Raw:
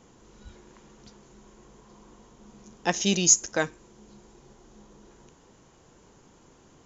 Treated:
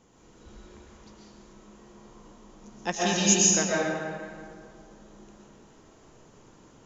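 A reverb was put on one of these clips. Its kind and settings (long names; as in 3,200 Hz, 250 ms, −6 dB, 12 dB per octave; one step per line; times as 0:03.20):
comb and all-pass reverb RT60 2.1 s, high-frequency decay 0.65×, pre-delay 85 ms, DRR −6 dB
level −5 dB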